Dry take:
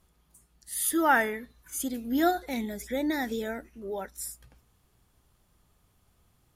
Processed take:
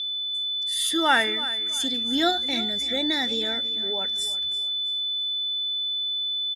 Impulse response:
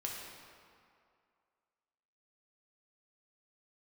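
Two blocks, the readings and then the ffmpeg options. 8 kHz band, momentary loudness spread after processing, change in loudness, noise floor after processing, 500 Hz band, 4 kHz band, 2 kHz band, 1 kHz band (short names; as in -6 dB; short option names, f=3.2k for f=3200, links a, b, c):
+0.5 dB, 4 LU, +6.0 dB, -30 dBFS, +0.5 dB, +25.5 dB, +4.0 dB, +1.5 dB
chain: -filter_complex "[0:a]highpass=57,aeval=exprs='val(0)+0.0112*sin(2*PI*3500*n/s)':c=same,lowpass=f=10k:w=0.5412,lowpass=f=10k:w=1.3066,equalizer=f=3.6k:w=1:g=12.5,asplit=2[a][b];[b]aecho=0:1:332|664|996:0.168|0.0537|0.0172[c];[a][c]amix=inputs=2:normalize=0"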